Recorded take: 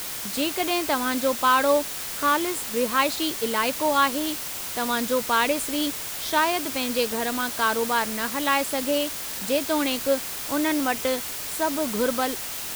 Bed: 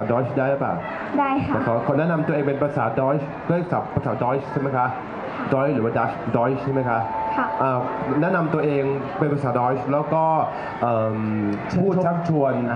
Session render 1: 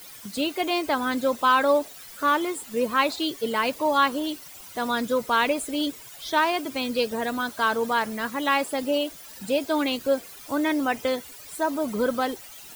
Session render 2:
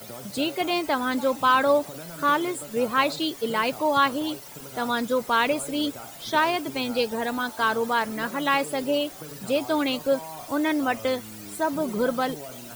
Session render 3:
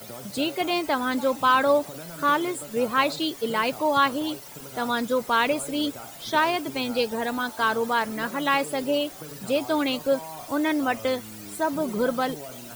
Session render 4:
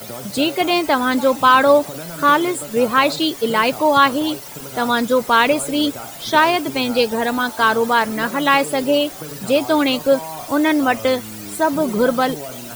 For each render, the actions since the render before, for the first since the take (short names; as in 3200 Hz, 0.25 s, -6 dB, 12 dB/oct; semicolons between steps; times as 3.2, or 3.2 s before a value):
denoiser 15 dB, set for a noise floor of -33 dBFS
add bed -20.5 dB
nothing audible
gain +8 dB; limiter -2 dBFS, peak gain reduction 2.5 dB